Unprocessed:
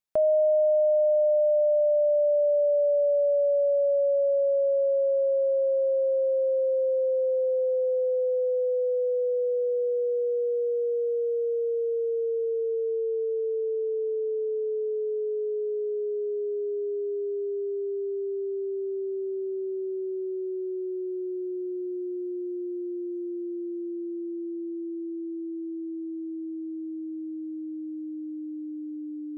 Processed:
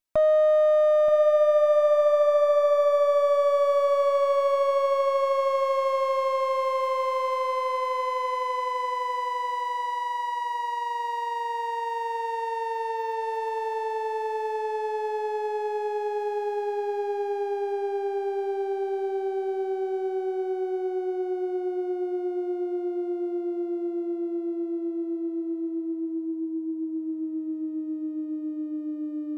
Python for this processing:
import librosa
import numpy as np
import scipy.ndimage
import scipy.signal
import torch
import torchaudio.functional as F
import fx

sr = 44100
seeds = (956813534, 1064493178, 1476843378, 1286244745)

p1 = fx.lower_of_two(x, sr, delay_ms=3.1)
p2 = 10.0 ** (-25.5 / 20.0) * np.tanh(p1 / 10.0 ** (-25.5 / 20.0))
p3 = p1 + F.gain(torch.from_numpy(p2), -4.5).numpy()
y = fx.echo_feedback(p3, sr, ms=928, feedback_pct=18, wet_db=-10.5)